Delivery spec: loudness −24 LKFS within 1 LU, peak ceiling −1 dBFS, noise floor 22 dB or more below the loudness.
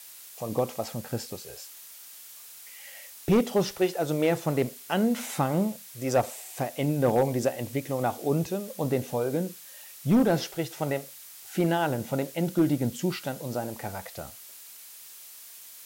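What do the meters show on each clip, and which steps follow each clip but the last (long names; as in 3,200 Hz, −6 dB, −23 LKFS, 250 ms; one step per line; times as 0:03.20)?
share of clipped samples 0.4%; peaks flattened at −15.5 dBFS; background noise floor −47 dBFS; target noise floor −50 dBFS; integrated loudness −28.0 LKFS; sample peak −15.5 dBFS; target loudness −24.0 LKFS
→ clipped peaks rebuilt −15.5 dBFS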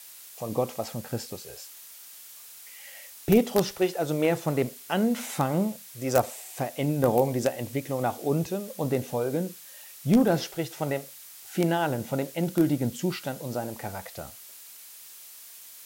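share of clipped samples 0.0%; background noise floor −47 dBFS; target noise floor −50 dBFS
→ broadband denoise 6 dB, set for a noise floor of −47 dBFS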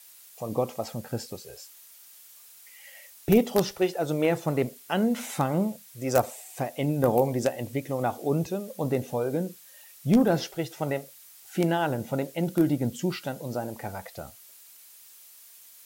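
background noise floor −52 dBFS; integrated loudness −28.0 LKFS; sample peak −6.5 dBFS; target loudness −24.0 LKFS
→ level +4 dB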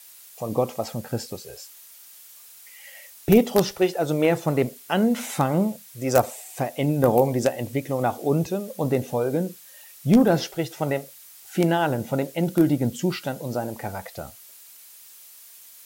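integrated loudness −24.0 LKFS; sample peak −2.5 dBFS; background noise floor −48 dBFS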